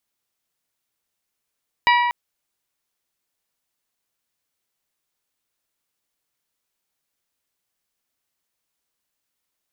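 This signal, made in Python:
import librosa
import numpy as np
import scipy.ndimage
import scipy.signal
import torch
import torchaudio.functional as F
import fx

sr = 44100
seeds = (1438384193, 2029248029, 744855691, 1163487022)

y = fx.strike_glass(sr, length_s=0.24, level_db=-13.0, body='bell', hz=966.0, decay_s=1.93, tilt_db=3.5, modes=6)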